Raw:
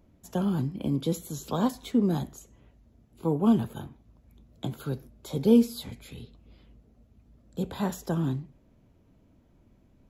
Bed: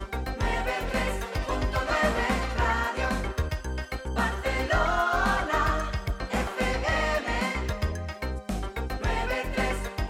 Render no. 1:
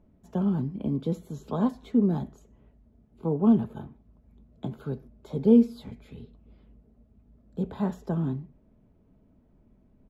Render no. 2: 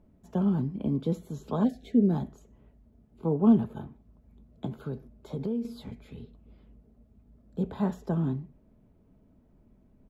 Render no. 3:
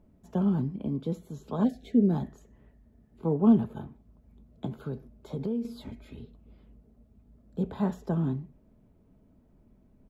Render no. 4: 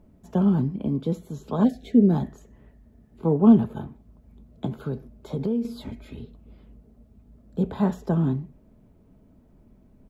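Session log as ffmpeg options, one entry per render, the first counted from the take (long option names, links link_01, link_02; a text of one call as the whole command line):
ffmpeg -i in.wav -af "lowpass=frequency=1000:poles=1,aecho=1:1:4.7:0.3" out.wav
ffmpeg -i in.wav -filter_complex "[0:a]asplit=3[link_01][link_02][link_03];[link_01]afade=type=out:start_time=1.63:duration=0.02[link_04];[link_02]asuperstop=centerf=1100:order=12:qfactor=1.3,afade=type=in:start_time=1.63:duration=0.02,afade=type=out:start_time=2.08:duration=0.02[link_05];[link_03]afade=type=in:start_time=2.08:duration=0.02[link_06];[link_04][link_05][link_06]amix=inputs=3:normalize=0,asettb=1/sr,asplit=3[link_07][link_08][link_09];[link_07]atrim=end=4.664[link_10];[link_08]atrim=start=4.66:end=5.65,asetpts=PTS-STARTPTS,afade=type=in:duration=0.004:curve=qsin,afade=type=out:start_time=0.986:duration=0.004:curve=qsin,acompressor=threshold=-28dB:ratio=6:attack=3.2:release=140:knee=1:detection=peak[link_11];[link_09]atrim=start=5.646[link_12];[link_10][link_11]acrossfade=duration=0.004:curve1=hsin:curve2=qsin[link_13];[link_13][link_12]acrossfade=duration=0.004:curve1=qsin:curve2=hsin" out.wav
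ffmpeg -i in.wav -filter_complex "[0:a]asettb=1/sr,asplit=3[link_01][link_02][link_03];[link_01]atrim=end=2.234[link_04];[link_02]atrim=start=2.23:end=3.38,asetpts=PTS-STARTPTS,afade=type=in:duration=0.004:curve=qsin,afade=type=out:start_time=1.146:duration=0.004:curve=qsin,equalizer=frequency=1800:width=7.9:gain=13.5[link_05];[link_03]atrim=start=3.376[link_06];[link_04][link_05]acrossfade=duration=0.004:curve1=hsin:curve2=qsin[link_07];[link_07][link_06]acrossfade=duration=0.004:curve1=qsin:curve2=hsin,asettb=1/sr,asplit=3[link_08][link_09][link_10];[link_08]atrim=end=5.804[link_11];[link_09]atrim=start=5.8:end=6.2,asetpts=PTS-STARTPTS,afade=type=in:duration=0.004:curve=qsin,afade=type=out:start_time=0.396:duration=0.004:curve=qsin,aecho=1:1:3.2:0.52,atrim=end_sample=17640[link_12];[link_10]atrim=start=6.196[link_13];[link_11][link_12]acrossfade=duration=0.004:curve1=hsin:curve2=qsin[link_14];[link_14][link_13]acrossfade=duration=0.004:curve1=qsin:curve2=hsin,asplit=3[link_15][link_16][link_17];[link_15]atrim=end=0.762[link_18];[link_16]atrim=start=0.758:end=1.592,asetpts=PTS-STARTPTS,volume=-3dB[link_19];[link_17]atrim=start=1.588[link_20];[link_18][link_19]acrossfade=duration=0.004:curve1=hsin:curve2=hsin[link_21];[link_21][link_20]acrossfade=duration=0.004:curve1=hsin:curve2=hsin" out.wav
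ffmpeg -i in.wav -af "volume=5.5dB" out.wav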